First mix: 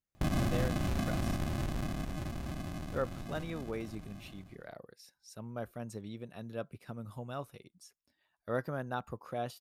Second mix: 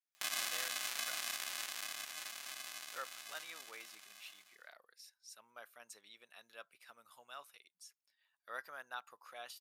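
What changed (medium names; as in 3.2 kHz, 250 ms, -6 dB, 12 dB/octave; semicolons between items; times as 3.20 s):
background: add treble shelf 2.2 kHz +9.5 dB; master: add high-pass 1.5 kHz 12 dB/octave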